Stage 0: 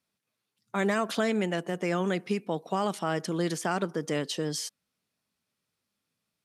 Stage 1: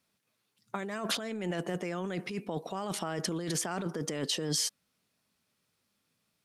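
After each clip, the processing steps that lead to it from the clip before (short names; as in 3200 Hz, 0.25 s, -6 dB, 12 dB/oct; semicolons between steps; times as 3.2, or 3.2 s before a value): negative-ratio compressor -34 dBFS, ratio -1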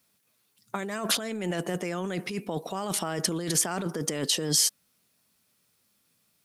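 high shelf 8100 Hz +12 dB; gain +3.5 dB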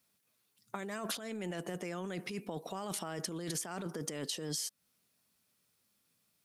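compressor 6:1, threshold -29 dBFS, peak gain reduction 10 dB; gain -6 dB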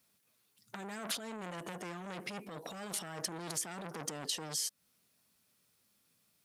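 core saturation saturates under 3500 Hz; gain +2.5 dB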